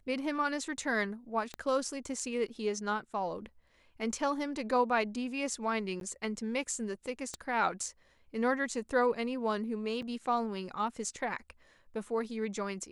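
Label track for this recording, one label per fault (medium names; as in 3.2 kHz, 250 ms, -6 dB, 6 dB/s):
1.540000	1.540000	pop -25 dBFS
6.000000	6.010000	dropout 12 ms
7.340000	7.340000	pop -25 dBFS
10.020000	10.020000	dropout 4.8 ms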